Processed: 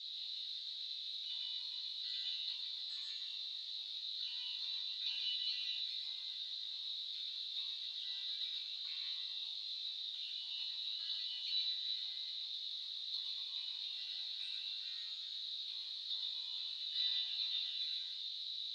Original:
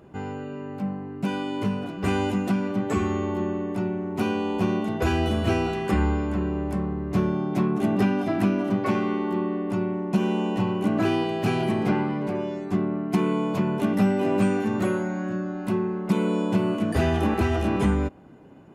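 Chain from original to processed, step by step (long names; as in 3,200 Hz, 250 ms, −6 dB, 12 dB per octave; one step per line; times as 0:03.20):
time-frequency cells dropped at random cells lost 47%
background noise pink −43 dBFS
flat-topped band-pass 3,900 Hz, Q 6.9
flutter between parallel walls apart 3.3 metres, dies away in 0.28 s
convolution reverb RT60 0.35 s, pre-delay 111 ms, DRR 1 dB
level +11 dB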